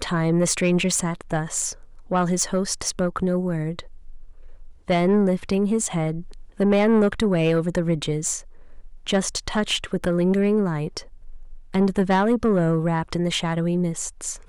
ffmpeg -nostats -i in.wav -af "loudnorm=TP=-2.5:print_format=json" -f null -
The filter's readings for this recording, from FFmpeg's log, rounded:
"input_i" : "-22.5",
"input_tp" : "-10.8",
"input_lra" : "2.8",
"input_thresh" : "-33.1",